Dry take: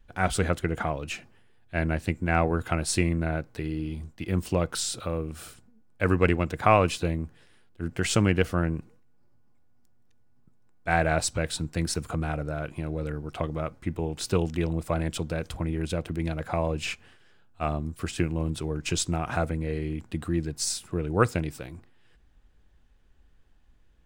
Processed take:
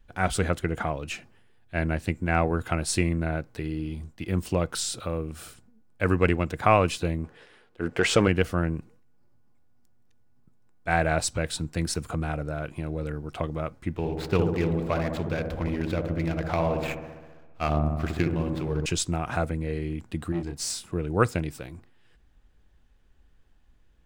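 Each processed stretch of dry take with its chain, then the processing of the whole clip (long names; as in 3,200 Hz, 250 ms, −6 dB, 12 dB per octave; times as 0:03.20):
0:07.24–0:08.28: parametric band 460 Hz +6.5 dB 0.48 octaves + mid-hump overdrive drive 16 dB, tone 2,100 Hz, clips at −7.5 dBFS
0:13.95–0:18.86: running median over 15 samples + parametric band 2,700 Hz +8.5 dB 1.7 octaves + delay with a low-pass on its return 66 ms, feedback 71%, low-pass 950 Hz, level −4 dB
0:20.32–0:20.91: high-shelf EQ 11,000 Hz −5 dB + tube saturation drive 25 dB, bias 0.25 + double-tracking delay 29 ms −5 dB
whole clip: no processing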